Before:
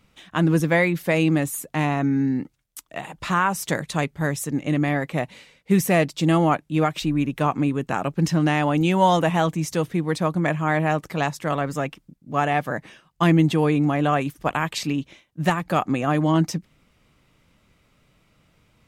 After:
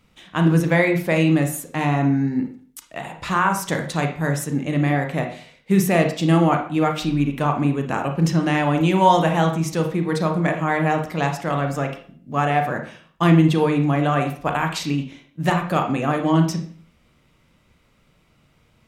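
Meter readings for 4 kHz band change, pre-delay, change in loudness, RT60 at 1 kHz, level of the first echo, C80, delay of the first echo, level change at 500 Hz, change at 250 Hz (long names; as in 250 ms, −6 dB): +1.0 dB, 28 ms, +2.0 dB, 0.50 s, no echo audible, 12.5 dB, no echo audible, +1.5 dB, +2.0 dB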